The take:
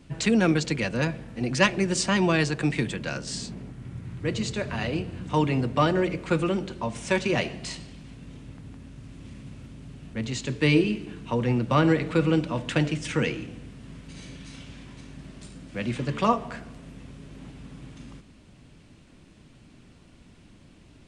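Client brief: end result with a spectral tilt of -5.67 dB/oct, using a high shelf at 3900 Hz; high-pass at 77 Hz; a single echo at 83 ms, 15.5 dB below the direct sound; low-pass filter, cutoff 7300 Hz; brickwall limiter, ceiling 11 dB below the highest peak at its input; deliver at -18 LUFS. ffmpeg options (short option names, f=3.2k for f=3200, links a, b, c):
-af "highpass=77,lowpass=7.3k,highshelf=f=3.9k:g=-7,alimiter=limit=-17.5dB:level=0:latency=1,aecho=1:1:83:0.168,volume=11.5dB"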